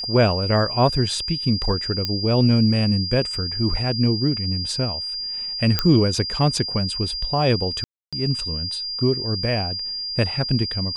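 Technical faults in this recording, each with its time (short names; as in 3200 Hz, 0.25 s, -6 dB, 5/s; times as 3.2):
tone 4800 Hz -26 dBFS
2.05 pop -9 dBFS
5.79 pop -4 dBFS
7.84–8.13 gap 0.286 s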